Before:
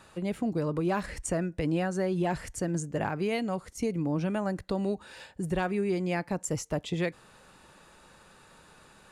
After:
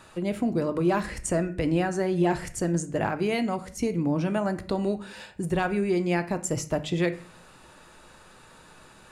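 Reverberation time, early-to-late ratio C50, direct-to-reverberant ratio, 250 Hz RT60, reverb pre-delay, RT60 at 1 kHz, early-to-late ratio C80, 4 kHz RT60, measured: 0.50 s, 15.5 dB, 9.0 dB, 0.65 s, 3 ms, 0.45 s, 19.5 dB, 0.35 s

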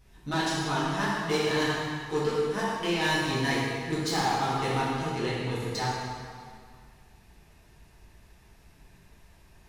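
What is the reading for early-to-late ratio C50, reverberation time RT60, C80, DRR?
-2.5 dB, 2.0 s, -0.5 dB, -10.0 dB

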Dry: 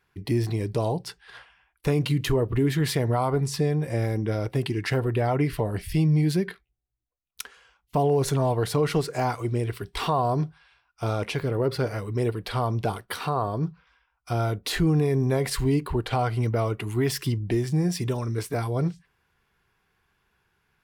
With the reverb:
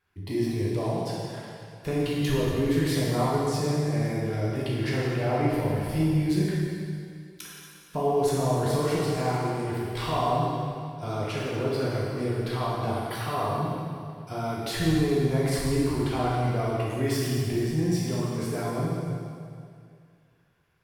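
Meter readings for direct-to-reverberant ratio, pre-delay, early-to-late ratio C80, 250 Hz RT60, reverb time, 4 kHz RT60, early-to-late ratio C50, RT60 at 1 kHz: -6.5 dB, 5 ms, 0.0 dB, 2.3 s, 2.3 s, 2.2 s, -2.5 dB, 2.3 s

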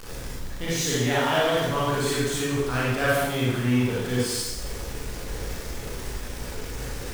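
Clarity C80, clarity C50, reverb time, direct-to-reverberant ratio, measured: 1.0 dB, -3.5 dB, 1.1 s, -8.0 dB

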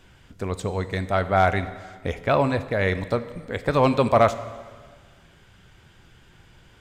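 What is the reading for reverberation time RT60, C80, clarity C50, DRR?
1.6 s, 14.5 dB, 13.5 dB, 11.5 dB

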